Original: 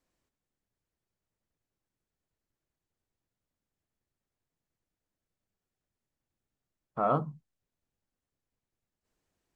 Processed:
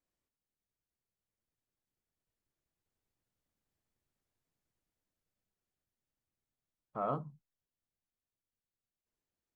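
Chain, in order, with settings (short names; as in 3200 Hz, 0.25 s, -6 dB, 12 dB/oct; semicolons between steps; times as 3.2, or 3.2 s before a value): Doppler pass-by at 3.99, 6 m/s, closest 8.1 m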